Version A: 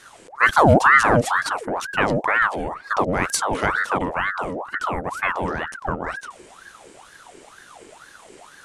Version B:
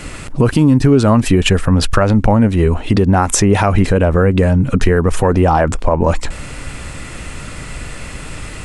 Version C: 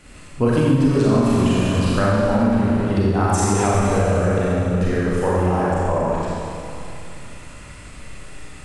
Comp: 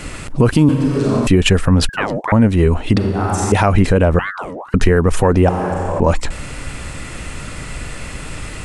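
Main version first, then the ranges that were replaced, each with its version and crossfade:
B
0.69–1.27 s: from C
1.89–2.32 s: from A
2.98–3.52 s: from C
4.19–4.74 s: from A
5.49–6.00 s: from C

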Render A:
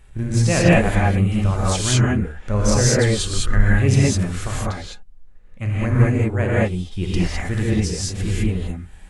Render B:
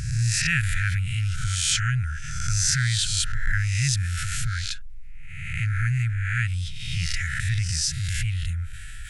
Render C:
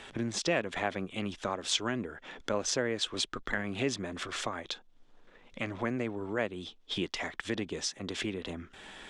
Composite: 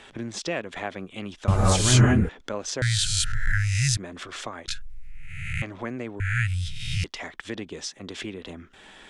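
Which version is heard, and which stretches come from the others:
C
1.48–2.29 s: from A
2.82–3.97 s: from B
4.68–5.62 s: from B
6.20–7.04 s: from B

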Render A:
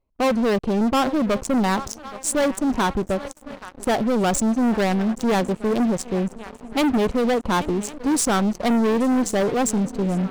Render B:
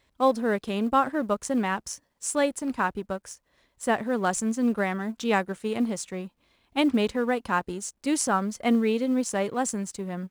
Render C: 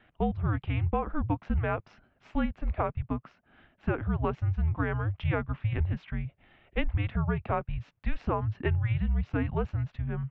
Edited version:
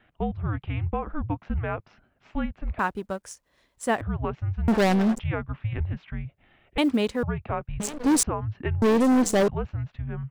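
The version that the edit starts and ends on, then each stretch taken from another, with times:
C
2.79–4.01 s: from B
4.68–5.19 s: from A
6.78–7.23 s: from B
7.80–8.23 s: from A
8.82–9.48 s: from A

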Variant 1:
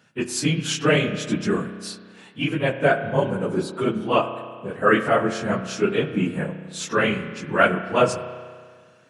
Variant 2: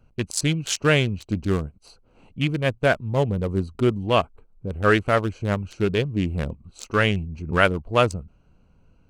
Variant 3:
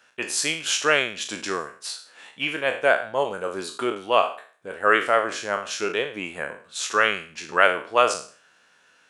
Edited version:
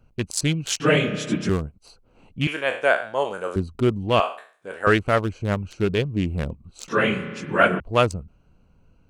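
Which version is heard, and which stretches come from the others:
2
0.80–1.49 s: from 1
2.47–3.56 s: from 3
4.20–4.87 s: from 3
6.88–7.80 s: from 1

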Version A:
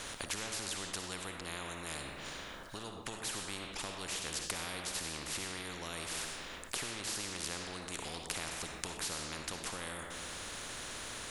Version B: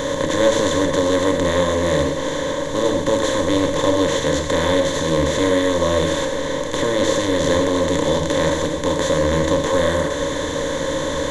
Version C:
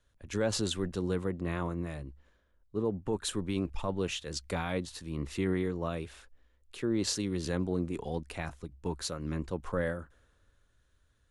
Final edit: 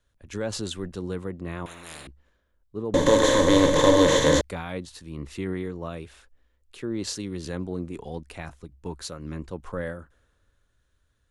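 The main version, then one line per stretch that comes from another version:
C
1.66–2.07 s: from A
2.94–4.41 s: from B

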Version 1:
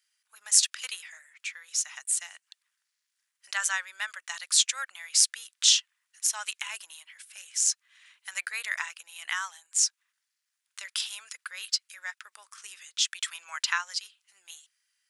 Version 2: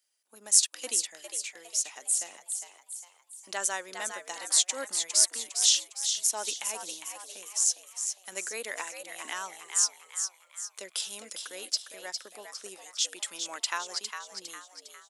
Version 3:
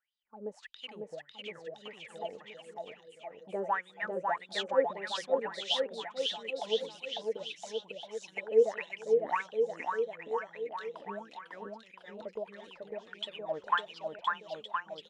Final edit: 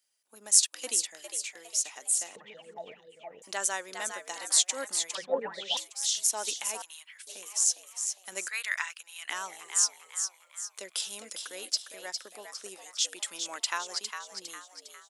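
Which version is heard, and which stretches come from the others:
2
2.36–3.42 s: from 3
5.15–5.77 s: from 3
6.82–7.27 s: from 1
8.48–9.30 s: from 1

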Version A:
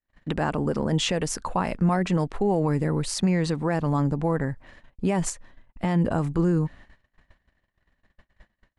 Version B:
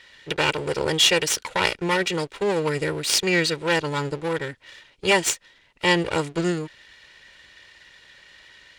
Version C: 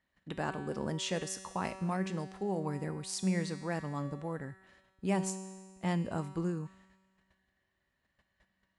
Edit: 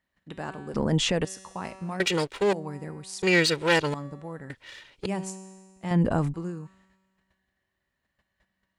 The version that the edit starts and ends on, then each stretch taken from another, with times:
C
0.74–1.25 s: from A
2.00–2.53 s: from B
3.22–3.94 s: from B
4.50–5.06 s: from B
5.91–6.34 s: from A

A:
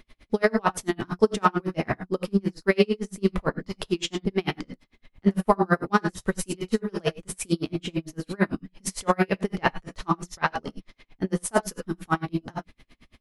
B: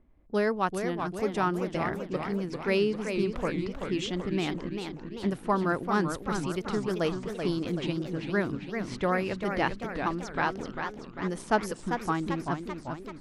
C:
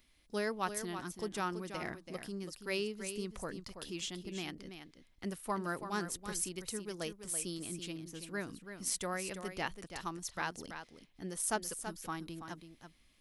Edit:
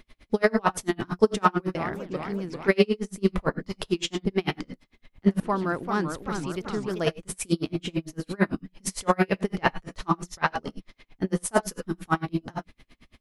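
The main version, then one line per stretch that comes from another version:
A
1.75–2.68 s: from B
5.40–7.06 s: from B
not used: C

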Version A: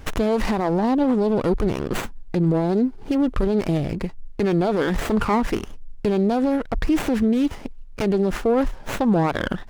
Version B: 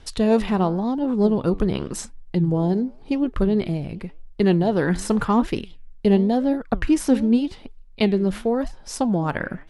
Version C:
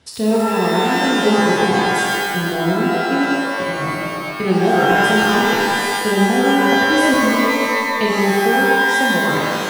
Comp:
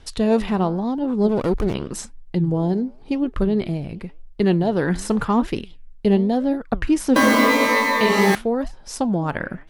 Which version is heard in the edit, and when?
B
1.29–1.74 s: from A
7.16–8.35 s: from C

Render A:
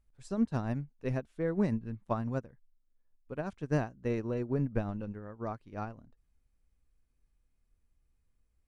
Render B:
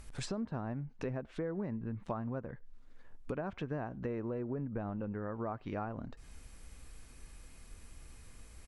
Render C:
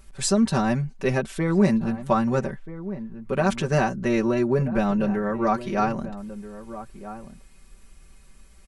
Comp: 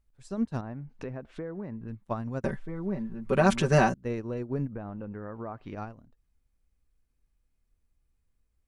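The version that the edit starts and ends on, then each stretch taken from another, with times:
A
0.61–1.88 s: from B
2.44–3.94 s: from C
4.69–5.75 s: from B

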